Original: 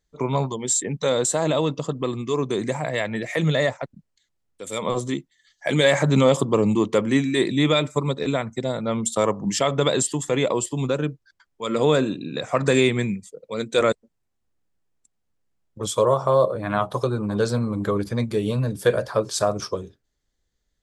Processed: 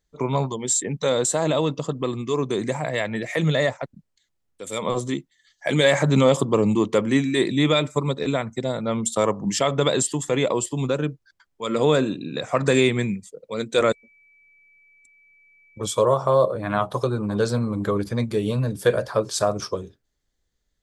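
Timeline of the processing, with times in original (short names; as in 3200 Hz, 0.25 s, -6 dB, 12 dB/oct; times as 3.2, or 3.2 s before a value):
13.87–15.99 whine 2300 Hz -54 dBFS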